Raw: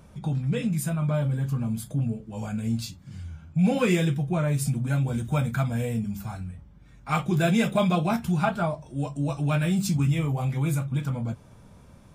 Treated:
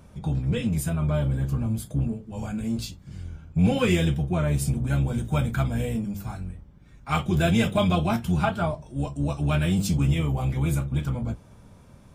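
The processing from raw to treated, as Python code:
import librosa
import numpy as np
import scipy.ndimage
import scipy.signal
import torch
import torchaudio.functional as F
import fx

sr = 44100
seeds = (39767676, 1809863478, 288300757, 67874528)

y = fx.octave_divider(x, sr, octaves=1, level_db=-5.0)
y = fx.dynamic_eq(y, sr, hz=3100.0, q=6.3, threshold_db=-57.0, ratio=4.0, max_db=7)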